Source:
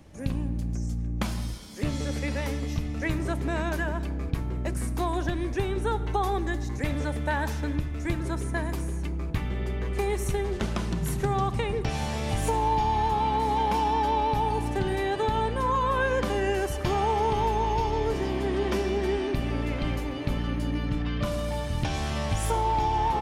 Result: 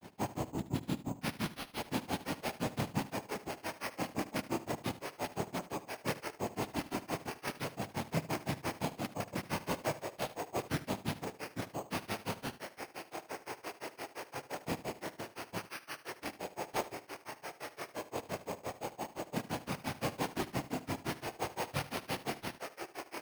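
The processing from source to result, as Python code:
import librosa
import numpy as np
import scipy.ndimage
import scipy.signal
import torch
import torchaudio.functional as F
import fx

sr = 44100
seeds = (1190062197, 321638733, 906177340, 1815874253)

p1 = fx.highpass(x, sr, hz=360.0, slope=6)
p2 = fx.over_compress(p1, sr, threshold_db=-38.0, ratio=-1.0)
p3 = fx.noise_vocoder(p2, sr, seeds[0], bands=4)
p4 = fx.chorus_voices(p3, sr, voices=2, hz=0.18, base_ms=29, depth_ms=2.1, mix_pct=45)
p5 = fx.granulator(p4, sr, seeds[1], grain_ms=119.0, per_s=5.8, spray_ms=11.0, spread_st=0)
p6 = p5 + fx.echo_single(p5, sr, ms=75, db=-16.0, dry=0)
p7 = np.repeat(p6[::6], 6)[:len(p6)]
y = p7 * librosa.db_to_amplitude(6.5)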